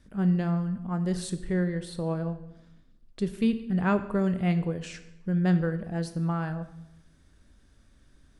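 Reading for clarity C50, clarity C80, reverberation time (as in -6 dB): 13.0 dB, 15.0 dB, 0.90 s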